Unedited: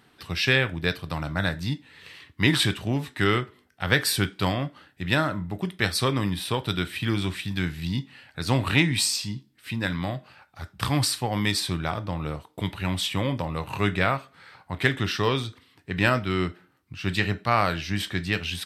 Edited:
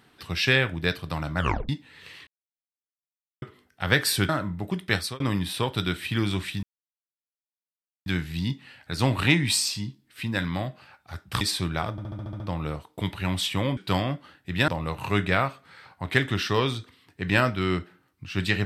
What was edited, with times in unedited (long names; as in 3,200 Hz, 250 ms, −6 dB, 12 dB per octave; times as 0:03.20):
0:01.38: tape stop 0.31 s
0:02.27–0:03.42: silence
0:04.29–0:05.20: move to 0:13.37
0:05.86–0:06.11: fade out
0:07.54: splice in silence 1.43 s
0:10.89–0:11.50: remove
0:12.00: stutter 0.07 s, 8 plays